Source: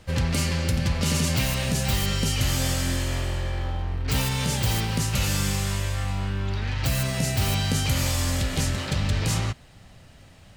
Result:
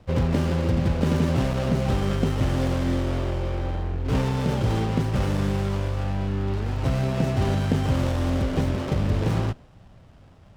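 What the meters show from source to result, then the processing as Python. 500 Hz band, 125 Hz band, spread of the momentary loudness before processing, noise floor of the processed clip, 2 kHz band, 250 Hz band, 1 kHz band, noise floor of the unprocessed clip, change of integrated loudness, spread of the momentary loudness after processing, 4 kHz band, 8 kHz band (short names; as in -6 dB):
+6.0 dB, +1.5 dB, 5 LU, -50 dBFS, -5.0 dB, +4.5 dB, +1.5 dB, -50 dBFS, +0.5 dB, 4 LU, -9.5 dB, -15.5 dB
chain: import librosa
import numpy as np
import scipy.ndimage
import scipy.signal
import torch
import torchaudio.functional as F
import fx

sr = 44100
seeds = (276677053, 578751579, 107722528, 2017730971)

y = scipy.signal.sosfilt(scipy.signal.butter(2, 4100.0, 'lowpass', fs=sr, output='sos'), x)
y = fx.dynamic_eq(y, sr, hz=370.0, q=0.76, threshold_db=-43.0, ratio=4.0, max_db=8)
y = fx.running_max(y, sr, window=17)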